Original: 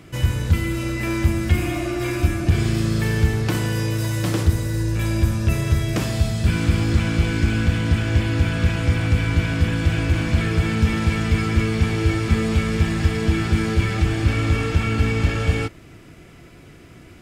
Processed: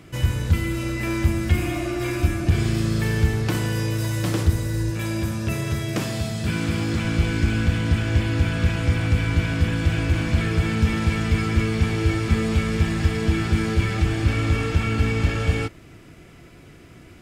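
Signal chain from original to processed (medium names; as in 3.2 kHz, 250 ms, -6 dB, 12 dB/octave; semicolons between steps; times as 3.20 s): 4.90–7.05 s: high-pass 120 Hz 12 dB/octave; trim -1.5 dB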